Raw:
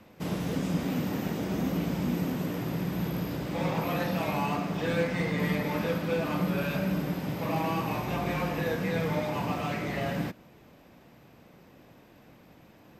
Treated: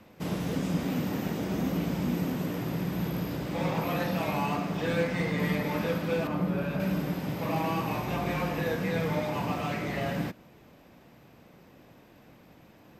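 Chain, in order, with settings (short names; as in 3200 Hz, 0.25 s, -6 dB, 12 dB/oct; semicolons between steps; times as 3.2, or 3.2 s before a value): 6.27–6.8 high shelf 2000 Hz -10.5 dB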